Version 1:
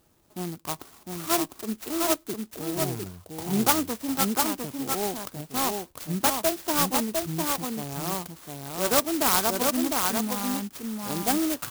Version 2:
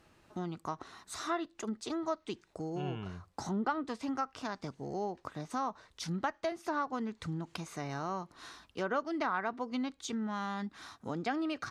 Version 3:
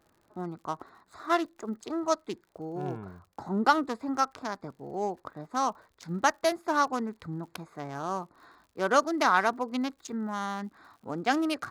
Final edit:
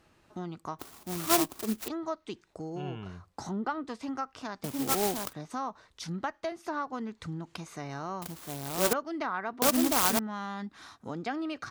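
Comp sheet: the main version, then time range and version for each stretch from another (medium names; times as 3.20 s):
2
0.79–1.88 s: from 1
4.64–5.33 s: from 1
8.22–8.93 s: from 1
9.62–10.19 s: from 1
not used: 3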